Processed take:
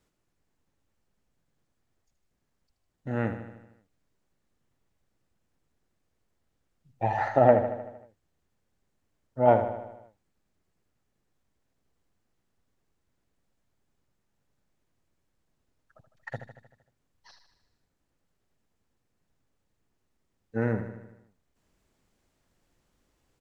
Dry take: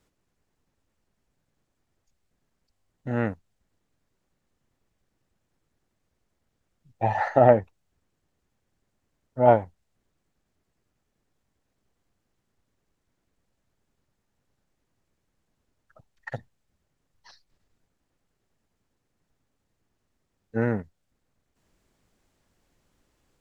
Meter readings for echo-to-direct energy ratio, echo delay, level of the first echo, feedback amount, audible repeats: -7.5 dB, 77 ms, -9.5 dB, 59%, 6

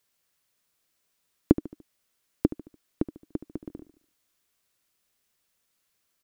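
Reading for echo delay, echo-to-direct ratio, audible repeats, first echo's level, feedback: 73 ms, -14.0 dB, 3, -15.0 dB, 44%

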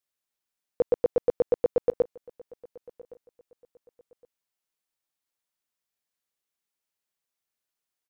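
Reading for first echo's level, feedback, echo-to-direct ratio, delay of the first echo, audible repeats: -23.5 dB, 28%, -23.0 dB, 1.115 s, 2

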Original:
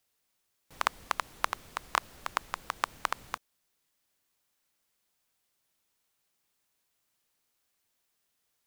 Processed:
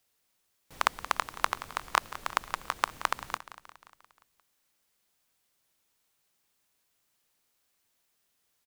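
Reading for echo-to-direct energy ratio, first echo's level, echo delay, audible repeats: -13.5 dB, -15.5 dB, 0.176 s, 5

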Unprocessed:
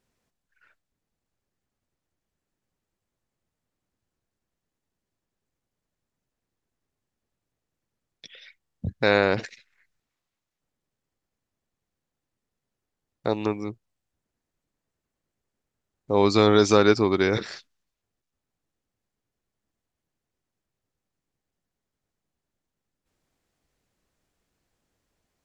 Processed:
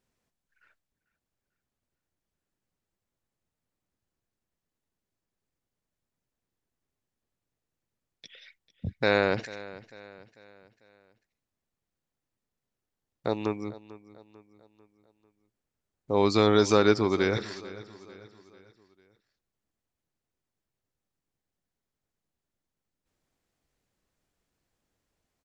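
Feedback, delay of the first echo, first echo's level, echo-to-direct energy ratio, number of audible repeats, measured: 46%, 0.445 s, -18.0 dB, -17.0 dB, 3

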